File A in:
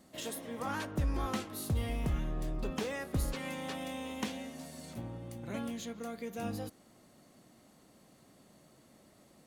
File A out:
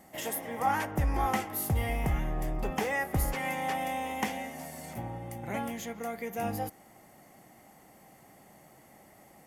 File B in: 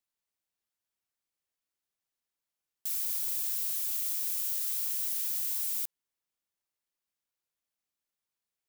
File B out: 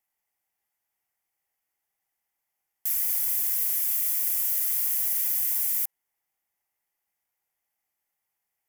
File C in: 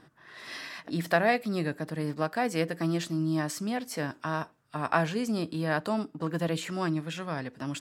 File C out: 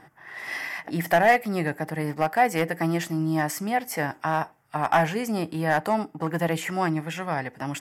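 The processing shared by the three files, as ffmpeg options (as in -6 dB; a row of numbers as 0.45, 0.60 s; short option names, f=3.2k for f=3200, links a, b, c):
-af "asoftclip=type=hard:threshold=-20dB,equalizer=f=250:t=o:w=0.33:g=-4,equalizer=f=800:t=o:w=0.33:g=12,equalizer=f=2k:t=o:w=0.33:g=9,equalizer=f=4k:t=o:w=0.33:g=-10,equalizer=f=12.5k:t=o:w=0.33:g=10,volume=3.5dB"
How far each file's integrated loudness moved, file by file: +5.5, +6.5, +5.0 LU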